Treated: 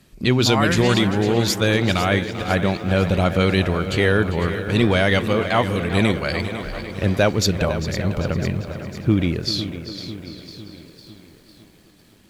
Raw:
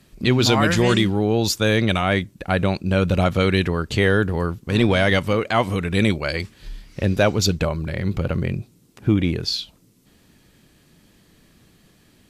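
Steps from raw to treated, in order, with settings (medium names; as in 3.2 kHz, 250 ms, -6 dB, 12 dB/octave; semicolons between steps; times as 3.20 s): tape echo 396 ms, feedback 65%, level -11 dB, low-pass 5.3 kHz; bit-crushed delay 502 ms, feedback 55%, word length 8-bit, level -12 dB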